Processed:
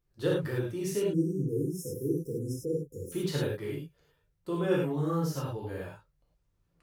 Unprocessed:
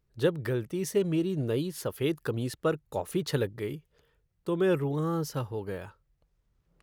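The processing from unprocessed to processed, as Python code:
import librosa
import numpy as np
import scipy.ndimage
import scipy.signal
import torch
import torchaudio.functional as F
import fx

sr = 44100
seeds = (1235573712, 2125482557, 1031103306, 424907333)

y = fx.spec_erase(x, sr, start_s=1.04, length_s=2.08, low_hz=520.0, high_hz=5100.0)
y = fx.rev_gated(y, sr, seeds[0], gate_ms=130, shape='flat', drr_db=-5.0)
y = F.gain(torch.from_numpy(y), -7.5).numpy()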